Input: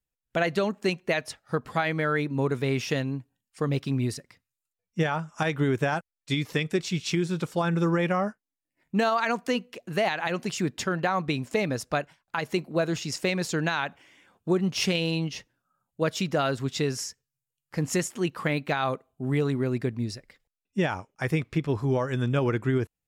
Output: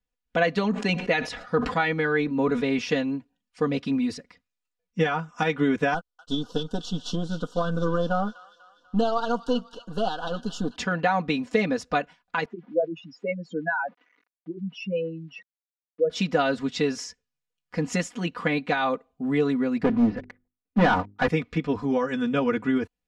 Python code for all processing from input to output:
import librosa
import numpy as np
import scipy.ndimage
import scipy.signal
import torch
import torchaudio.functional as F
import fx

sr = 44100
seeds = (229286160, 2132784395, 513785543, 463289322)

y = fx.chain(x, sr, fx.high_shelf(hz=11000.0, db=-7.0),
    fx.sustainer(db_per_s=73.0), at=(0.63, 2.79))
y = fx.chain(y, sr, fx.halfwave_gain(db=-7.0),
    fx.ellip_bandstop(low_hz=1500.0, high_hz=3000.0, order=3, stop_db=40),
    fx.echo_wet_highpass(ms=246, feedback_pct=54, hz=1600.0, wet_db=-13.0), at=(5.94, 10.76))
y = fx.chain(y, sr, fx.spec_expand(power=3.6),
    fx.sample_gate(floor_db=-53.0),
    fx.bandpass_edges(low_hz=300.0, high_hz=2200.0), at=(12.45, 16.1))
y = fx.chain(y, sr, fx.lowpass(hz=1800.0, slope=24),
    fx.leveller(passes=3),
    fx.hum_notches(base_hz=50, count=8), at=(19.83, 21.28))
y = scipy.signal.sosfilt(scipy.signal.butter(2, 4900.0, 'lowpass', fs=sr, output='sos'), y)
y = y + 0.97 * np.pad(y, (int(4.1 * sr / 1000.0), 0))[:len(y)]